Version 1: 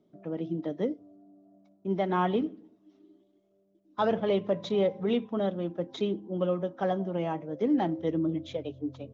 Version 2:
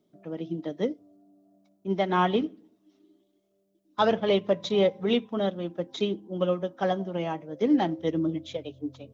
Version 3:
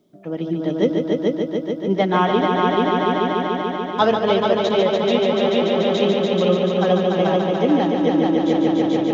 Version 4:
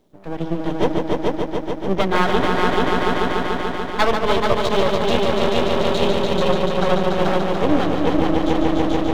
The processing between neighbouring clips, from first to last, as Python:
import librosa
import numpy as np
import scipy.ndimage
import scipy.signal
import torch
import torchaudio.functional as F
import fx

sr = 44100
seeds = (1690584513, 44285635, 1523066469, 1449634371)

y1 = fx.high_shelf(x, sr, hz=2500.0, db=10.0)
y1 = fx.upward_expand(y1, sr, threshold_db=-36.0, expansion=1.5)
y1 = F.gain(torch.from_numpy(y1), 4.0).numpy()
y2 = fx.echo_heads(y1, sr, ms=145, heads='all three', feedback_pct=75, wet_db=-6.0)
y2 = fx.rider(y2, sr, range_db=3, speed_s=0.5)
y2 = F.gain(torch.from_numpy(y2), 5.5).numpy()
y3 = np.maximum(y2, 0.0)
y3 = F.gain(torch.from_numpy(y3), 4.0).numpy()